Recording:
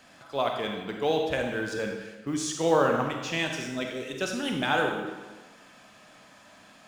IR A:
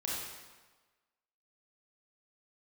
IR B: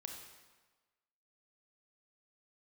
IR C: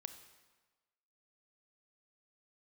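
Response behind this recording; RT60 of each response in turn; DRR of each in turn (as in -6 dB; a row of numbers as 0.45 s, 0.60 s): B; 1.3 s, 1.3 s, 1.3 s; -5.5 dB, 2.0 dB, 9.0 dB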